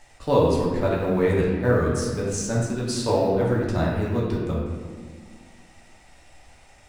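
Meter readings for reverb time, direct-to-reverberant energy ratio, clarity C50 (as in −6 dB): 1.6 s, −5.5 dB, 0.5 dB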